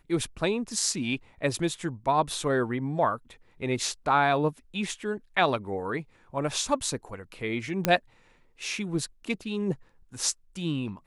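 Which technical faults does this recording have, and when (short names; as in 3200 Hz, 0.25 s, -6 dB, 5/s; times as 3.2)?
7.85 pop -8 dBFS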